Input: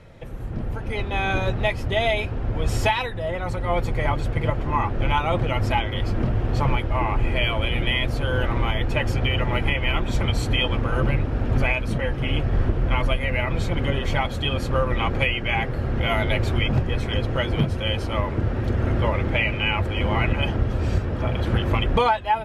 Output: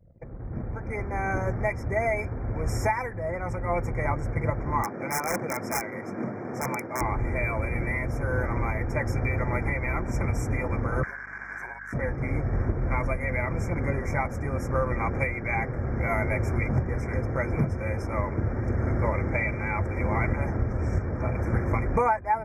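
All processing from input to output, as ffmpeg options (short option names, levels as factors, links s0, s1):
-filter_complex "[0:a]asettb=1/sr,asplit=3[s0][s1][s2];[s0]atrim=end=4.834[s3];[s1]atrim=start=4.83:end=7.01,asetpts=PTS-STARTPTS,afade=t=in:d=0.004:c=qsin,afade=t=out:st=2.176:d=0.004:c=qsin,highpass=f=170:w=0.5412,highpass=f=170:w=1.3066,aeval=exprs='(mod(6.68*val(0)+1,2)-1)/6.68':c=same[s4];[s2]atrim=start=7.006[s5];[s3][s4]acrossfade=d=0.004:c1=hsin:c2=qsin[s6];[s6][s5]acrossfade=d=0.004:c1=qsin:c2=hsin,asettb=1/sr,asplit=3[s7][s8][s9];[s7]atrim=end=11.034[s10];[s8]atrim=start=11.03:end=11.93,asetpts=PTS-STARTPTS,afade=t=in:d=0.004:c=qsin,afade=t=out:st=0.896:d=0.004:c=qsin,acrossover=split=360|740|3300[s11][s12][s13][s14];[s11]acompressor=threshold=0.02:ratio=3[s15];[s12]acompressor=threshold=0.00562:ratio=3[s16];[s13]acompressor=threshold=0.01:ratio=3[s17];[s14]acompressor=threshold=0.00501:ratio=3[s18];[s15][s16][s17][s18]amix=inputs=4:normalize=0,aeval=exprs='val(0)*sin(2*PI*1600*n/s)':c=same,aeval=exprs='val(0)+0.00447*(sin(2*PI*50*n/s)+sin(2*PI*2*50*n/s)/2+sin(2*PI*3*50*n/s)/3+sin(2*PI*4*50*n/s)/4+sin(2*PI*5*50*n/s)/5)':c=same[s19];[s9]atrim=start=11.926[s20];[s10][s19]acrossfade=d=0.004:c1=hsin:c2=qsin[s21];[s21][s20]acrossfade=d=0.004:c1=qsin:c2=hsin,highpass=42,anlmdn=0.251,afftfilt=real='re*(1-between(b*sr/4096,2400,5100))':imag='im*(1-between(b*sr/4096,2400,5100))':win_size=4096:overlap=0.75,volume=0.668"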